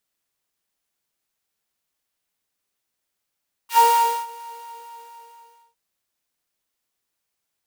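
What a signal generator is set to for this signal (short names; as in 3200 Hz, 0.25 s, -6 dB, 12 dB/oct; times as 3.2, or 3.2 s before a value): synth patch with filter wobble A#5, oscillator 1 triangle, oscillator 2 level -15 dB, sub -15 dB, noise -10.5 dB, filter highpass, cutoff 590 Hz, Q 1.4, filter envelope 2 oct, filter decay 0.08 s, filter sustain 5%, attack 91 ms, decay 0.48 s, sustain -24 dB, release 1.31 s, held 0.75 s, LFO 4.3 Hz, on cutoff 0.6 oct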